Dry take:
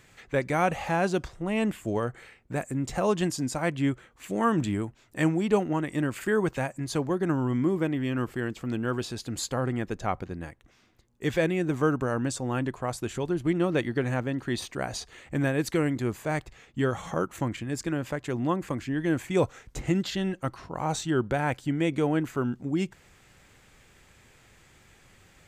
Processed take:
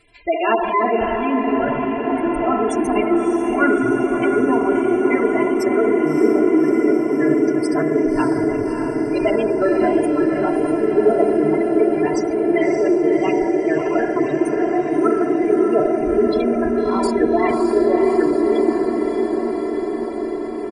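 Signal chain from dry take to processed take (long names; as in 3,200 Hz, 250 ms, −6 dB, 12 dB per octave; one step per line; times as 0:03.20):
comb filter 3.6 ms, depth 93%
convolution reverb RT60 3.4 s, pre-delay 3 ms, DRR −1 dB
in parallel at −5 dB: bit-depth reduction 6 bits, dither none
on the sum: gate on every frequency bin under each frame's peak −15 dB strong
speed change +23%
feedback delay with all-pass diffusion 612 ms, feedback 76%, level −5.5 dB
level −1.5 dB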